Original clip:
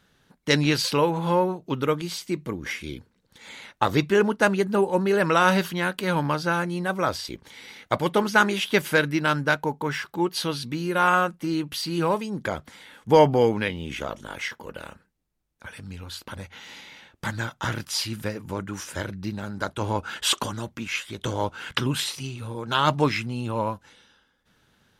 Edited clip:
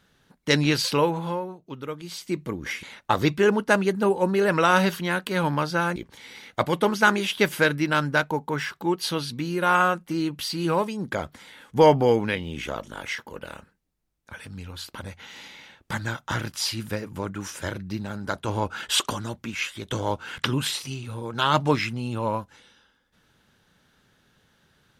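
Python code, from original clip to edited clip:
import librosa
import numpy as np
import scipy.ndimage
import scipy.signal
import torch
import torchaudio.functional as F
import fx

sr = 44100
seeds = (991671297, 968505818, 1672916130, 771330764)

y = fx.edit(x, sr, fx.fade_down_up(start_s=1.06, length_s=1.27, db=-10.0, fade_s=0.35),
    fx.cut(start_s=2.83, length_s=0.72),
    fx.cut(start_s=6.68, length_s=0.61), tone=tone)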